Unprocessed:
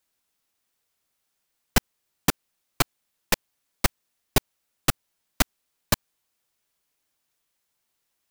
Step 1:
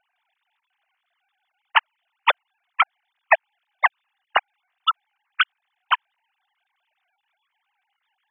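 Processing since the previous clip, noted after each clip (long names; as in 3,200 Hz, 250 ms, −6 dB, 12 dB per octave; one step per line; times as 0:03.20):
three sine waves on the formant tracks
level +4 dB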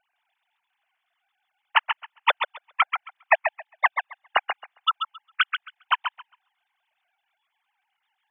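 feedback echo with a high-pass in the loop 135 ms, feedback 16%, high-pass 170 Hz, level −7 dB
level −2.5 dB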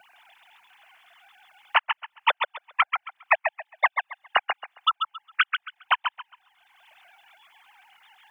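multiband upward and downward compressor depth 70%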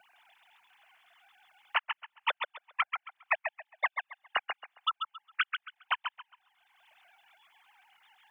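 dynamic equaliser 800 Hz, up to −4 dB, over −38 dBFS, Q 1.6
level −7.5 dB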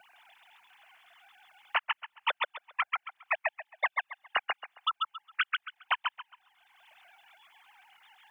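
brickwall limiter −21 dBFS, peak gain reduction 6.5 dB
level +4 dB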